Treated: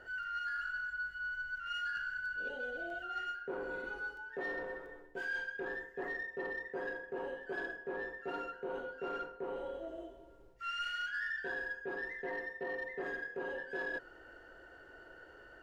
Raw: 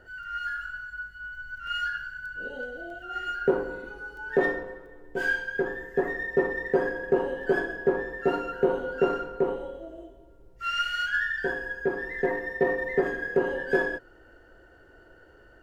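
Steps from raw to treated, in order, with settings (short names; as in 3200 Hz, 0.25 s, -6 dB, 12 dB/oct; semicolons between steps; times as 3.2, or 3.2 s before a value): reverse; compressor 6:1, threshold -36 dBFS, peak gain reduction 17.5 dB; reverse; overdrive pedal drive 9 dB, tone 5000 Hz, clips at -26.5 dBFS; gain -3 dB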